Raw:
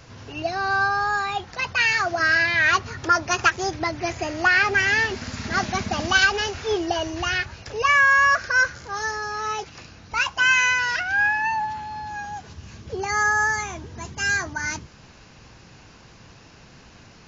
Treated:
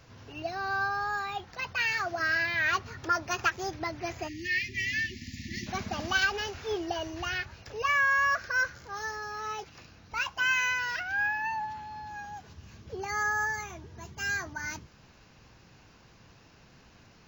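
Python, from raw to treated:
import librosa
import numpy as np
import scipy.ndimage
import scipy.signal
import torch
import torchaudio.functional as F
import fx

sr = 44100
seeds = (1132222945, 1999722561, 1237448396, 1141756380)

y = fx.brickwall_bandstop(x, sr, low_hz=370.0, high_hz=1700.0, at=(4.27, 5.66), fade=0.02)
y = fx.notch_comb(y, sr, f0_hz=260.0, at=(13.45, 14.19))
y = np.interp(np.arange(len(y)), np.arange(len(y))[::2], y[::2])
y = F.gain(torch.from_numpy(y), -8.5).numpy()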